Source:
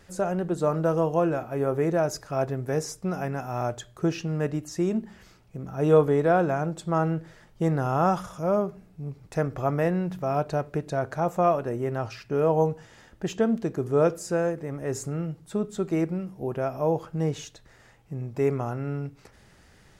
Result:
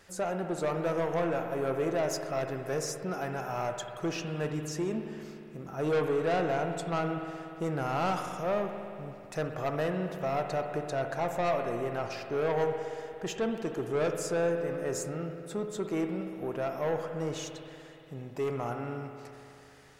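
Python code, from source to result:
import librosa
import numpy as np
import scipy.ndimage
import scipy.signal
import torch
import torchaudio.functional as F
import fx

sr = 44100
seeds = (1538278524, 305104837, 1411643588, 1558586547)

y = fx.low_shelf(x, sr, hz=270.0, db=-11.0)
y = 10.0 ** (-25.0 / 20.0) * np.tanh(y / 10.0 ** (-25.0 / 20.0))
y = fx.rev_spring(y, sr, rt60_s=2.8, pass_ms=(59,), chirp_ms=75, drr_db=5.0)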